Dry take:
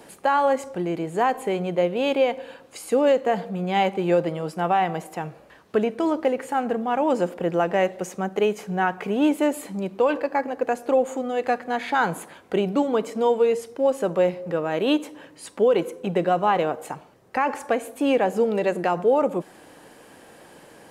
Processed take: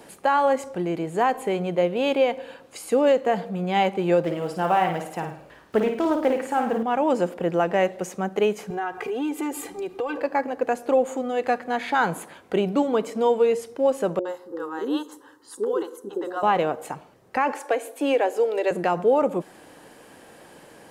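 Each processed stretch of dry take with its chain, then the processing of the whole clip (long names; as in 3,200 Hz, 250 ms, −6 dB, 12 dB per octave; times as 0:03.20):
0:04.24–0:06.83: one scale factor per block 7 bits + flutter between parallel walls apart 9.2 metres, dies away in 0.5 s + highs frequency-modulated by the lows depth 0.15 ms
0:08.70–0:10.18: comb filter 2.5 ms, depth 99% + downward compressor 3 to 1, threshold −27 dBFS
0:14.19–0:16.43: high-pass filter 200 Hz 6 dB per octave + phaser with its sweep stopped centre 640 Hz, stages 6 + three-band delay without the direct sound lows, mids, highs 60/90 ms, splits 480/6,000 Hz
0:17.52–0:18.71: Chebyshev high-pass filter 290 Hz, order 5 + notch filter 1,200 Hz, Q 14
whole clip: no processing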